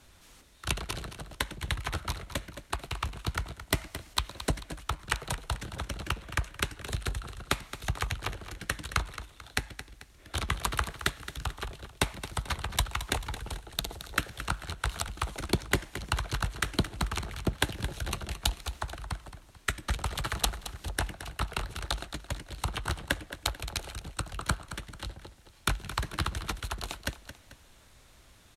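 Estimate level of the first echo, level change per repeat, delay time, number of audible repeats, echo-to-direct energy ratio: −12.5 dB, −7.5 dB, 220 ms, 2, −12.0 dB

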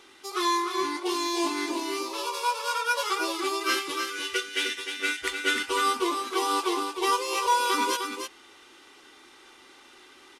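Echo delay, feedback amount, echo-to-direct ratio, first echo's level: 305 ms, repeats not evenly spaced, −6.5 dB, −6.5 dB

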